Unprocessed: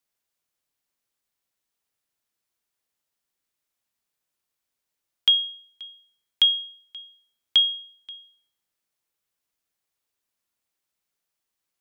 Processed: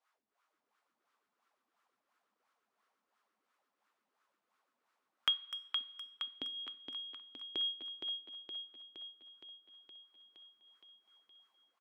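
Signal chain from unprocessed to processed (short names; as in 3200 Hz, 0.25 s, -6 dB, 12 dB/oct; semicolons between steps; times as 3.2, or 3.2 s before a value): wah 2.9 Hz 210–1300 Hz, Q 4.6; speakerphone echo 0.25 s, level -11 dB; two-slope reverb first 0.5 s, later 2.4 s, from -18 dB, DRR 13.5 dB; in parallel at -1.5 dB: compressor, threshold -55 dBFS, peak gain reduction 17.5 dB; on the sum: low shelf 190 Hz -5.5 dB; on a send: feedback echo 0.467 s, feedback 59%, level -5 dB; on the sum: mismatched tape noise reduction encoder only; gain +7.5 dB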